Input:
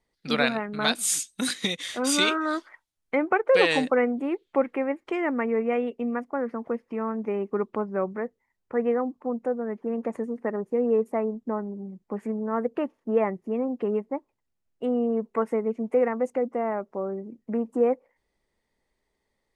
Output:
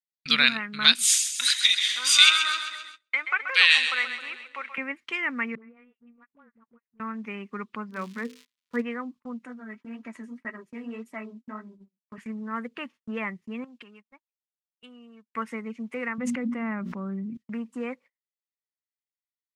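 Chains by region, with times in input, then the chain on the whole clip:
1.08–4.78 s: high-pass 900 Hz + two-band feedback delay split 560 Hz, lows 267 ms, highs 131 ms, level -9 dB
5.55–7.00 s: low-pass 1.4 kHz + phase dispersion highs, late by 73 ms, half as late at 610 Hz + compression 10:1, threshold -39 dBFS
7.90–8.80 s: hum notches 50/100/150/200/250/300/350/400/450/500 Hz + crackle 270 per s -43 dBFS + small resonant body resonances 250/460/1000 Hz, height 11 dB, ringing for 80 ms
9.45–12.18 s: flange 1.8 Hz, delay 5.8 ms, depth 8.8 ms, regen -27% + comb 3.1 ms, depth 52%
13.64–15.30 s: tilt shelf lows -5 dB, about 820 Hz + band-stop 2 kHz, Q 9.4 + compression 4:1, threshold -40 dBFS
16.18–17.37 s: tone controls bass +15 dB, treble -5 dB + hum notches 60/120/180/240/300/360 Hz + decay stretcher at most 31 dB/s
whole clip: frequency weighting D; gate -41 dBFS, range -32 dB; high-order bell 500 Hz -12.5 dB; trim -1.5 dB

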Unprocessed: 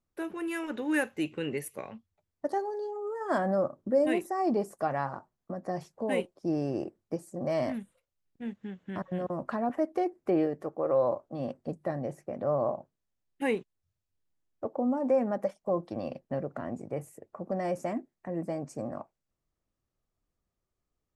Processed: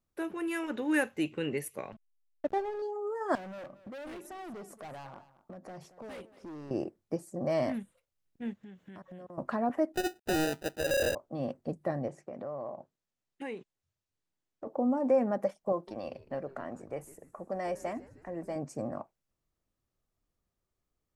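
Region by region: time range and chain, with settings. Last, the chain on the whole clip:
1.92–2.82 s: median filter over 9 samples + hysteresis with a dead band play -36.5 dBFS + treble shelf 5.2 kHz -5.5 dB
3.35–6.71 s: hard clipper -31.5 dBFS + compression 5:1, threshold -44 dBFS + delay 228 ms -16.5 dB
8.63–9.38 s: treble shelf 5.4 kHz +7 dB + compression 4:1, threshold -47 dBFS
9.94–11.15 s: CVSD coder 64 kbps + sample-rate reducer 1.1 kHz + hard clipper -26 dBFS
12.08–14.67 s: low-pass 8.7 kHz 24 dB/octave + bass shelf 92 Hz -10.5 dB + compression 3:1, threshold -38 dBFS
15.72–18.56 s: bass shelf 310 Hz -11.5 dB + frequency-shifting echo 154 ms, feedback 57%, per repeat -140 Hz, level -19 dB
whole clip: none

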